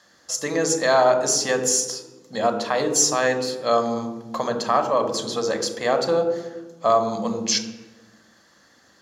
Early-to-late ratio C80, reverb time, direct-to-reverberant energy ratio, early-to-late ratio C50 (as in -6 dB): 10.5 dB, 1.2 s, 6.5 dB, 8.5 dB